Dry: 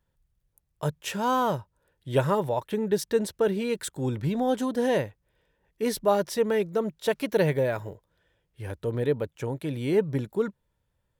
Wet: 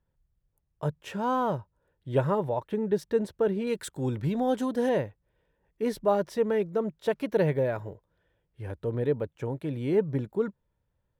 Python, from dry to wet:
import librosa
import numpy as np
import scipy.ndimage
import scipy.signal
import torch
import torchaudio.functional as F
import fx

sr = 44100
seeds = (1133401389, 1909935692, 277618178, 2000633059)

y = fx.peak_eq(x, sr, hz=15000.0, db=fx.steps((0.0, -14.5), (3.67, -4.5), (4.89, -12.0)), octaves=2.5)
y = y * librosa.db_to_amplitude(-1.0)